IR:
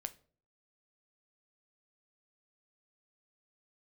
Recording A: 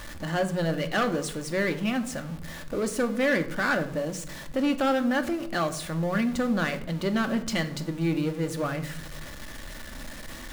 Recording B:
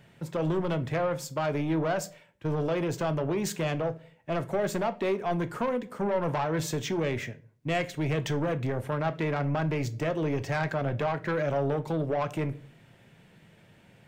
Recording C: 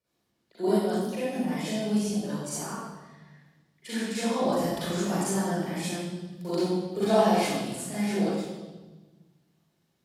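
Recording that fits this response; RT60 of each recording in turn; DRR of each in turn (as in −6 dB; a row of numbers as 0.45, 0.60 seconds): B; 0.80, 0.45, 1.2 seconds; 6.5, 10.0, −11.5 decibels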